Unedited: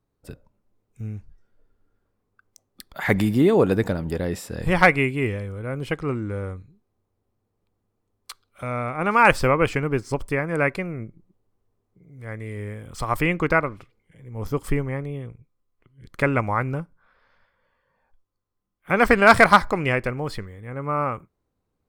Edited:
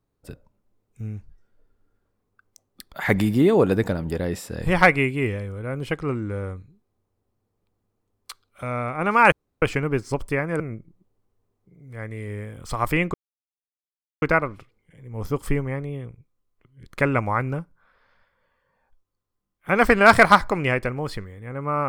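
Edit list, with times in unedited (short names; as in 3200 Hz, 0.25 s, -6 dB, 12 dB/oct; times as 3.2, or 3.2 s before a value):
9.32–9.62 room tone
10.6–10.89 cut
13.43 insert silence 1.08 s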